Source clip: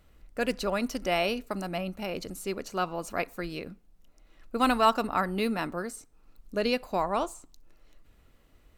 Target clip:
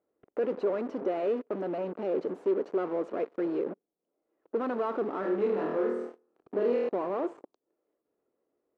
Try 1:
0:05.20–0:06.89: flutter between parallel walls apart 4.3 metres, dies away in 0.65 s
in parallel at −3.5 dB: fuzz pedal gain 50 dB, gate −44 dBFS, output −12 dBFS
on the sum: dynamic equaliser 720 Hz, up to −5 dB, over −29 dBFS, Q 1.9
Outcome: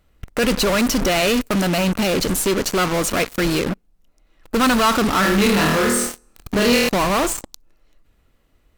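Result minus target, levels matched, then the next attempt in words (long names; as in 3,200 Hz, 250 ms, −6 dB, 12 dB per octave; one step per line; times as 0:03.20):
500 Hz band −5.5 dB
0:05.20–0:06.89: flutter between parallel walls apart 4.3 metres, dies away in 0.65 s
in parallel at −3.5 dB: fuzz pedal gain 50 dB, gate −44 dBFS, output −12 dBFS
on the sum: dynamic equaliser 720 Hz, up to −5 dB, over −29 dBFS, Q 1.9
four-pole ladder band-pass 470 Hz, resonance 45%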